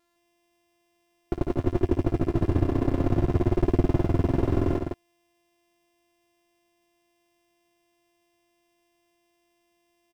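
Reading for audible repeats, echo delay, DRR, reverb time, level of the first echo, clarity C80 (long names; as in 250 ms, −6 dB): 2, 57 ms, no reverb audible, no reverb audible, −8.5 dB, no reverb audible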